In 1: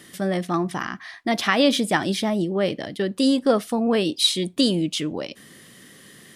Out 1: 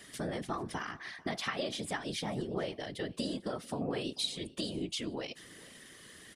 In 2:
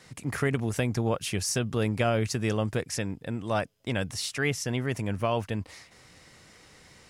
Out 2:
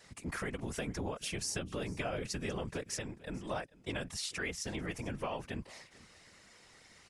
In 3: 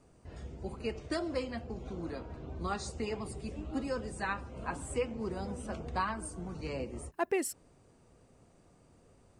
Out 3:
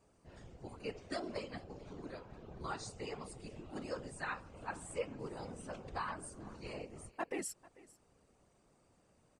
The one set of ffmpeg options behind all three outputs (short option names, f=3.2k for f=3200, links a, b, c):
-af "lowpass=f=11k:w=0.5412,lowpass=f=11k:w=1.3066,lowshelf=f=400:g=-5.5,acompressor=threshold=-29dB:ratio=6,afftfilt=real='hypot(re,im)*cos(2*PI*random(0))':imag='hypot(re,im)*sin(2*PI*random(1))':win_size=512:overlap=0.75,aecho=1:1:443:0.0841,volume=1.5dB"